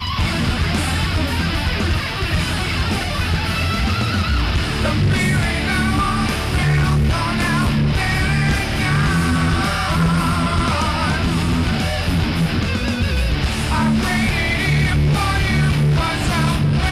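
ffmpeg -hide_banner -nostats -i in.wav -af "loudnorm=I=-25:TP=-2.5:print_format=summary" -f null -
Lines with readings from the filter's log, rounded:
Input Integrated:    -18.1 LUFS
Input True Peak:     -10.6 dBTP
Input LRA:             2.3 LU
Input Threshold:     -28.1 LUFS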